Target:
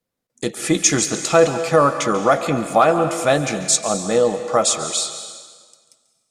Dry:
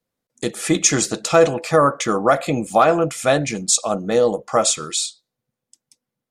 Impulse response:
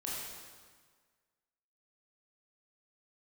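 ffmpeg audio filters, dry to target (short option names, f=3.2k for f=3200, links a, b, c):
-filter_complex "[0:a]asplit=2[a][b];[1:a]atrim=start_sample=2205,lowshelf=f=390:g=-7.5,adelay=140[c];[b][c]afir=irnorm=-1:irlink=0,volume=-10dB[d];[a][d]amix=inputs=2:normalize=0"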